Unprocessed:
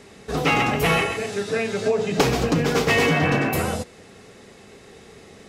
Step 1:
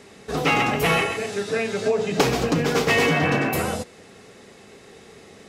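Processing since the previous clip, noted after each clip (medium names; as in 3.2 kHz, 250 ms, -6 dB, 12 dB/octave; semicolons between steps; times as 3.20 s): bass shelf 88 Hz -7.5 dB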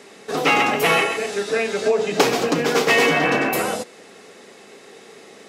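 high-pass 260 Hz 12 dB/octave; trim +3.5 dB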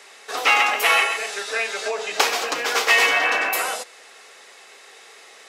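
high-pass 870 Hz 12 dB/octave; trim +2 dB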